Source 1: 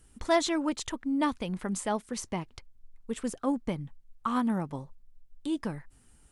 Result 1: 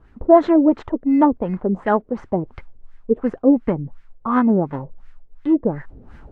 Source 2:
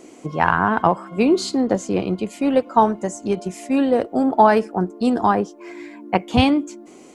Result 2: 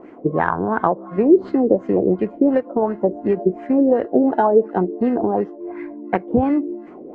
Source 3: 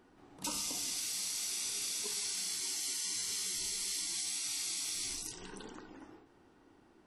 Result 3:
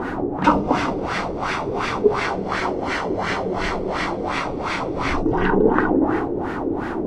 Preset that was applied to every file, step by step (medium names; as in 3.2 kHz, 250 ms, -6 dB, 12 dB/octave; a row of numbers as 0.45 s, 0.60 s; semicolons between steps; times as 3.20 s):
treble shelf 3.4 kHz -8 dB; in parallel at -11 dB: sample-and-hold 19×; on the sum: compression 6:1, threshold -19 dBFS; added noise blue -61 dBFS; dynamic bell 380 Hz, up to +6 dB, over -35 dBFS, Q 1.1; reverse; upward compressor, threshold -35 dBFS; reverse; LFO low-pass sine 2.8 Hz 440–1800 Hz; peak normalisation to -1.5 dBFS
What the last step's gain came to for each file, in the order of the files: +6.5 dB, 0.0 dB, +24.0 dB